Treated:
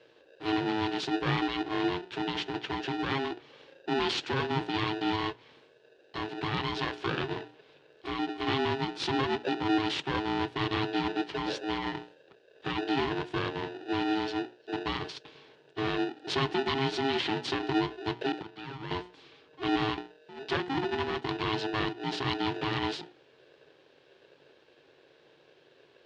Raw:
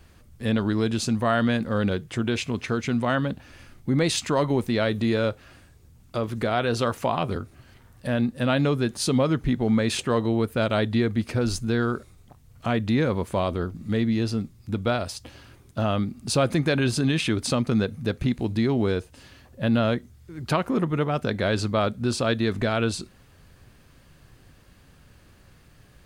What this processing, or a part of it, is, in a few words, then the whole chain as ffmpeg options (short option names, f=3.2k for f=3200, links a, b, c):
ring modulator pedal into a guitar cabinet: -filter_complex "[0:a]aemphasis=mode=production:type=75fm,bandreject=f=60:t=h:w=6,bandreject=f=120:t=h:w=6,bandreject=f=180:t=h:w=6,bandreject=f=240:t=h:w=6,bandreject=f=300:t=h:w=6,bandreject=f=360:t=h:w=6,bandreject=f=420:t=h:w=6,bandreject=f=480:t=h:w=6,asettb=1/sr,asplit=3[a][b][c];[a]atrim=end=18.424[d];[b]atrim=start=18.42:end=18.91,asetpts=PTS-STARTPTS,afade=t=in:d=0.004:c=qsin,afade=t=out:st=0.486:d=0.004:c=qsin,acrossover=split=570 2200:gain=0.126 1 0.224[e][f][g];[e][f][g]amix=inputs=3:normalize=0[h];[c]atrim=start=18.906[i];[d][h]acrossfade=d=0.004:c1=hsin:c2=qsin[j];[j][i]acrossfade=d=0.004:c1=qsin:c2=hsin,aeval=exprs='val(0)*sgn(sin(2*PI*540*n/s))':c=same,highpass=110,equalizer=f=140:t=q:w=4:g=7,equalizer=f=200:t=q:w=4:g=-9,equalizer=f=350:t=q:w=4:g=7,equalizer=f=660:t=q:w=4:g=-9,equalizer=f=1.2k:t=q:w=4:g=-6,equalizer=f=2.1k:t=q:w=4:g=-6,lowpass=f=3.7k:w=0.5412,lowpass=f=3.7k:w=1.3066,volume=-4.5dB"